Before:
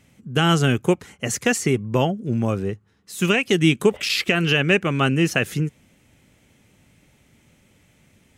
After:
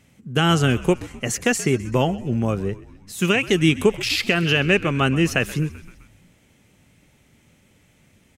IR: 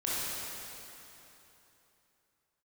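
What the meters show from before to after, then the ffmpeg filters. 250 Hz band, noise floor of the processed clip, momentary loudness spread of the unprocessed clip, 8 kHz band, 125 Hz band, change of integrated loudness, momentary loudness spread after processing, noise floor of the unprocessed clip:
0.0 dB, -59 dBFS, 9 LU, 0.0 dB, 0.0 dB, 0.0 dB, 9 LU, -59 dBFS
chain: -filter_complex "[0:a]asplit=6[a][b][c][d][e][f];[b]adelay=129,afreqshift=-65,volume=-18dB[g];[c]adelay=258,afreqshift=-130,volume=-22.4dB[h];[d]adelay=387,afreqshift=-195,volume=-26.9dB[i];[e]adelay=516,afreqshift=-260,volume=-31.3dB[j];[f]adelay=645,afreqshift=-325,volume=-35.7dB[k];[a][g][h][i][j][k]amix=inputs=6:normalize=0"

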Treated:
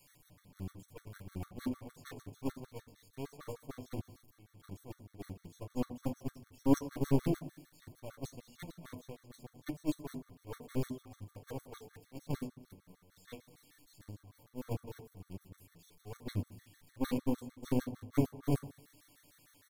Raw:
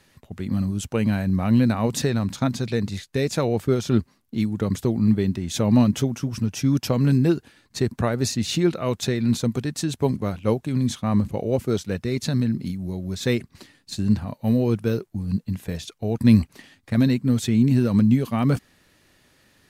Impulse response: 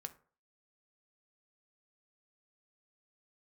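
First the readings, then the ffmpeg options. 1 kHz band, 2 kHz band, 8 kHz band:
-15.5 dB, -19.5 dB, -21.0 dB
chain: -filter_complex "[0:a]aeval=exprs='val(0)+0.5*0.0708*sgn(val(0))':c=same,highshelf=f=8.4k:g=10.5,aecho=1:1:6.8:0.97,adynamicequalizer=threshold=0.0355:dfrequency=260:dqfactor=3.9:tfrequency=260:tqfactor=3.9:attack=5:release=100:ratio=0.375:range=2.5:mode=boostabove:tftype=bell,aeval=exprs='(tanh(4.47*val(0)+0.8)-tanh(0.8))/4.47':c=same,acompressor=mode=upward:threshold=-21dB:ratio=2.5,aecho=1:1:212:0.237,alimiter=limit=-14.5dB:level=0:latency=1:release=21,agate=range=-44dB:threshold=-17dB:ratio=16:detection=peak[a];[1:a]atrim=start_sample=2205,asetrate=27783,aresample=44100[b];[a][b]afir=irnorm=-1:irlink=0,afftfilt=real='re*gt(sin(2*PI*6.6*pts/sr)*(1-2*mod(floor(b*sr/1024/1100),2)),0)':imag='im*gt(sin(2*PI*6.6*pts/sr)*(1-2*mod(floor(b*sr/1024/1100),2)),0)':win_size=1024:overlap=0.75,volume=11.5dB"

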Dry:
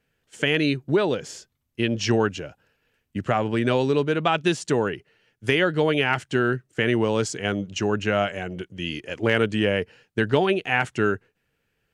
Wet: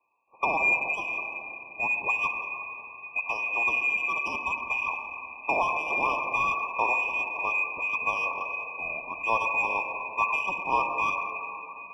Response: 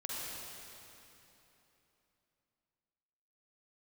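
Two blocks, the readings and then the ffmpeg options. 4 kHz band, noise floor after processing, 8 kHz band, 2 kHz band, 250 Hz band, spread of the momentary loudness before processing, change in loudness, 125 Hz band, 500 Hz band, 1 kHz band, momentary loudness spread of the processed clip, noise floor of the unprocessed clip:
-17.0 dB, -46 dBFS, under -10 dB, +1.5 dB, -21.5 dB, 11 LU, -3.0 dB, -24.5 dB, -14.5 dB, +1.5 dB, 10 LU, -74 dBFS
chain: -filter_complex "[0:a]acrossover=split=160 2100:gain=0.2 1 0.2[a][b][c];[a][b][c]amix=inputs=3:normalize=0,lowpass=f=2.3k:t=q:w=0.5098,lowpass=f=2.3k:t=q:w=0.6013,lowpass=f=2.3k:t=q:w=0.9,lowpass=f=2.3k:t=q:w=2.563,afreqshift=-2700,asplit=2[d][e];[1:a]atrim=start_sample=2205[f];[e][f]afir=irnorm=-1:irlink=0,volume=-2.5dB[g];[d][g]amix=inputs=2:normalize=0,asplit=2[h][i];[i]highpass=f=720:p=1,volume=11dB,asoftclip=type=tanh:threshold=-4.5dB[j];[h][j]amix=inputs=2:normalize=0,lowpass=f=1.1k:p=1,volume=-6dB,afftfilt=real='re*eq(mod(floor(b*sr/1024/1200),2),0)':imag='im*eq(mod(floor(b*sr/1024/1200),2),0)':win_size=1024:overlap=0.75"

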